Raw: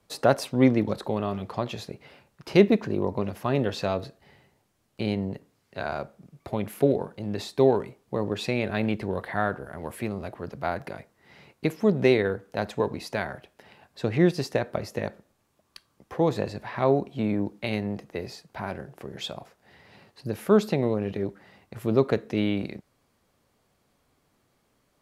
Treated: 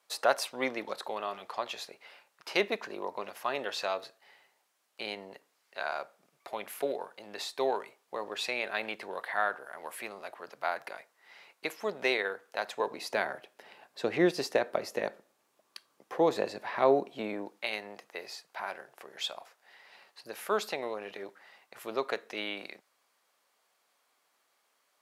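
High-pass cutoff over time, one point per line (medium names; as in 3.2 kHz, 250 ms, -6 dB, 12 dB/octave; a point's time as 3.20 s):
12.68 s 790 Hz
13.15 s 380 Hz
17.05 s 380 Hz
17.68 s 800 Hz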